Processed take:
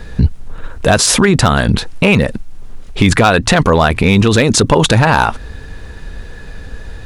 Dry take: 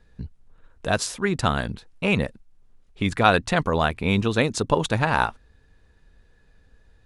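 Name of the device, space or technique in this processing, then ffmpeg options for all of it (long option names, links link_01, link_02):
loud club master: -af "acompressor=threshold=-24dB:ratio=3,asoftclip=type=hard:threshold=-18dB,alimiter=level_in=28.5dB:limit=-1dB:release=50:level=0:latency=1,volume=-1dB"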